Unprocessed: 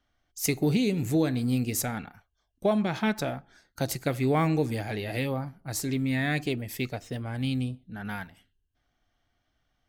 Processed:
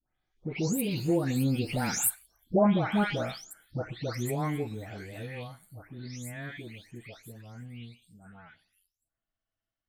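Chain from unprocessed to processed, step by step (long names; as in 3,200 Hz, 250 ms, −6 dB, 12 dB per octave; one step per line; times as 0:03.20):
every frequency bin delayed by itself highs late, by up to 398 ms
source passing by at 0:02.27, 22 m/s, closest 13 metres
level +5.5 dB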